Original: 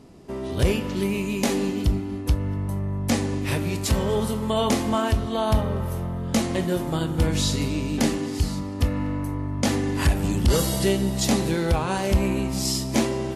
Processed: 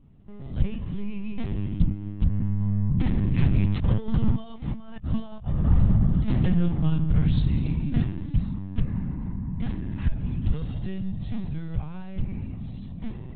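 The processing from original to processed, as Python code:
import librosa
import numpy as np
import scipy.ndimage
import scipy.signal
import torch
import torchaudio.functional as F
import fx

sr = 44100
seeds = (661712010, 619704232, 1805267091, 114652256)

y = fx.doppler_pass(x, sr, speed_mps=10, closest_m=5.2, pass_at_s=4.95)
y = fx.over_compress(y, sr, threshold_db=-32.0, ratio=-0.5)
y = fx.lpc_vocoder(y, sr, seeds[0], excitation='pitch_kept', order=16)
y = fx.low_shelf_res(y, sr, hz=250.0, db=13.0, q=1.5)
y = fx.doppler_dist(y, sr, depth_ms=0.18)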